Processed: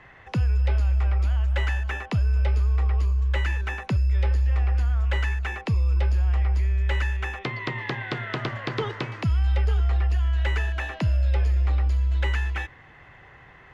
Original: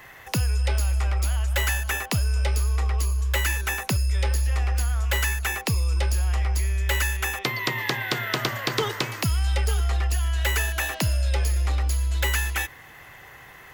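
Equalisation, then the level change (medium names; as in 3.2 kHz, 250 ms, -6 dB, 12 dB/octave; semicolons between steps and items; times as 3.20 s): low-pass 2.9 kHz 12 dB/octave; bass shelf 290 Hz +6 dB; -4.0 dB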